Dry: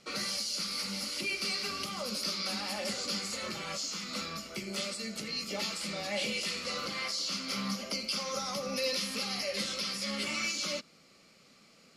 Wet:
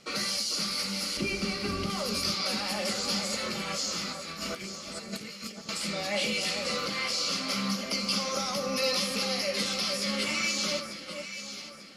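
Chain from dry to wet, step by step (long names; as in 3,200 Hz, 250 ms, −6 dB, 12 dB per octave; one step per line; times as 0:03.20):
0:01.17–0:01.90: RIAA equalisation playback
0:04.12–0:05.69: compressor whose output falls as the input rises −44 dBFS, ratio −0.5
delay that swaps between a low-pass and a high-pass 446 ms, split 1,600 Hz, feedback 61%, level −6 dB
level +4 dB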